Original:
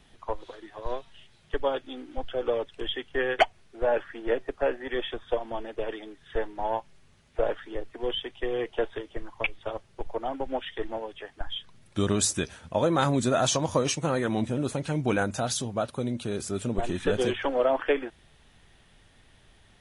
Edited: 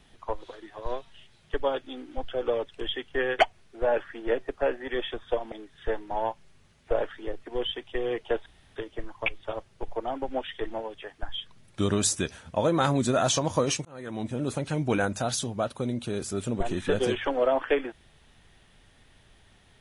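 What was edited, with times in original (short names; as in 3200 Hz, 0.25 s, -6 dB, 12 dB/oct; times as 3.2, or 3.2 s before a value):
5.52–6 cut
8.94 insert room tone 0.30 s
14.03–14.71 fade in linear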